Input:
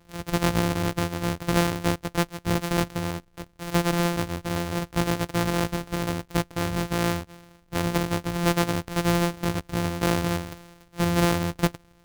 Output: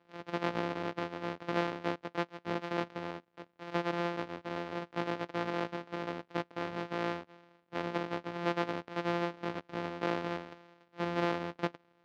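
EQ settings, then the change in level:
high-pass filter 290 Hz 12 dB per octave
high-frequency loss of the air 240 metres
high-shelf EQ 9,100 Hz −4 dB
−6.0 dB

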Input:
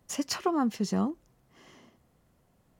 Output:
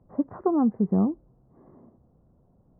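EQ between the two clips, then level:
Gaussian smoothing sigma 9 samples
high-frequency loss of the air 410 metres
+7.0 dB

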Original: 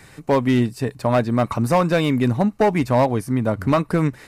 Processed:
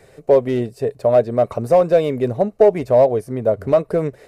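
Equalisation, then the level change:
low-shelf EQ 150 Hz +4 dB
flat-topped bell 520 Hz +14.5 dB 1.1 octaves
−7.5 dB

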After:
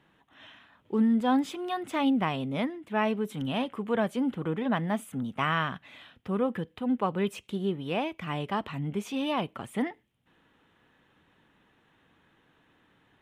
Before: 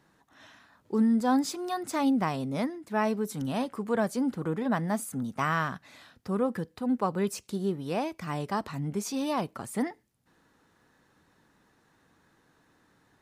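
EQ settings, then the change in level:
drawn EQ curve 1,600 Hz 0 dB, 3,200 Hz +9 dB, 4,600 Hz −12 dB, 10,000 Hz −9 dB
0.0 dB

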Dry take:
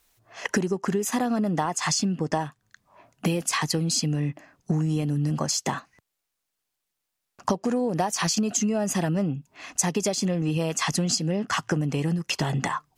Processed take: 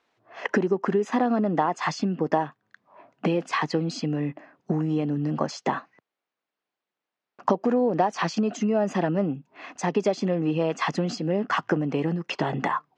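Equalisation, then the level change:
high-pass filter 260 Hz 12 dB per octave
high-frequency loss of the air 53 metres
head-to-tape spacing loss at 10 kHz 28 dB
+6.0 dB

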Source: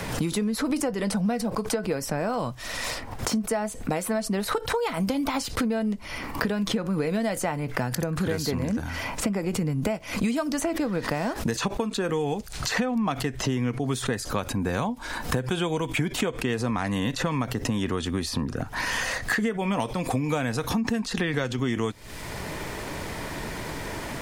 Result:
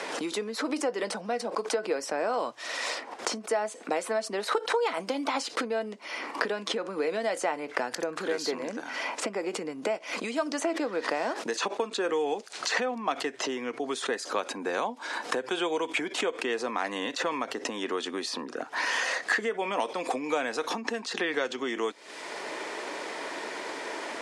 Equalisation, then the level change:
high-pass filter 330 Hz 24 dB per octave
Bessel low-pass filter 6,800 Hz, order 6
0.0 dB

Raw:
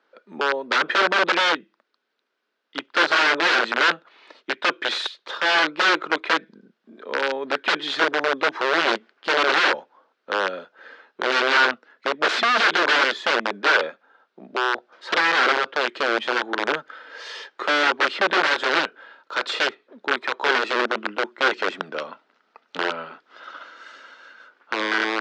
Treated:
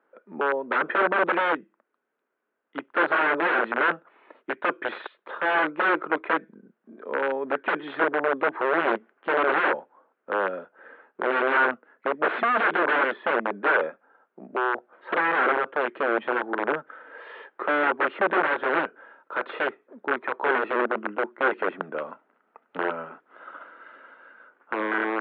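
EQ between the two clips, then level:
Gaussian smoothing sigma 4.3 samples
0.0 dB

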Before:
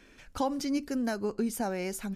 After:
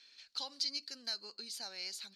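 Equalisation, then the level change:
resonant band-pass 4,300 Hz, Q 9
+15.0 dB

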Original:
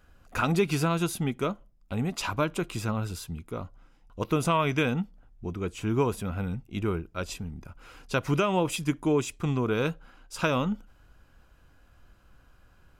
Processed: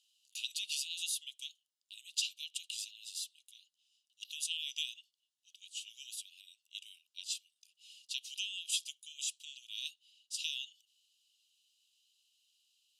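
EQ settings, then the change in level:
Chebyshev high-pass with heavy ripple 2,800 Hz, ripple 3 dB
low-pass filter 9,000 Hz 12 dB per octave
+4.0 dB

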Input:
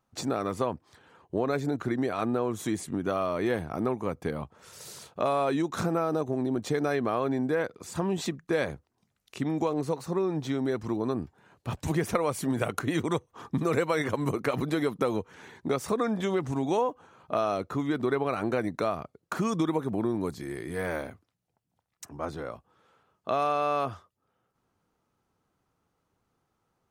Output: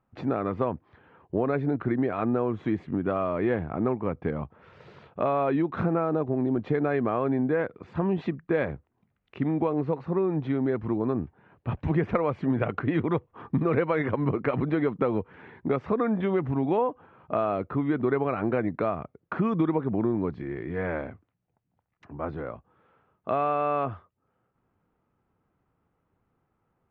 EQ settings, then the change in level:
low-pass filter 2,600 Hz 24 dB per octave
low-shelf EQ 370 Hz +4.5 dB
0.0 dB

